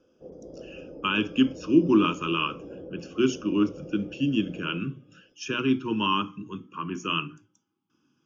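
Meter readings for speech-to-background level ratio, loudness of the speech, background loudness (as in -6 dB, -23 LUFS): 17.5 dB, -26.5 LUFS, -44.0 LUFS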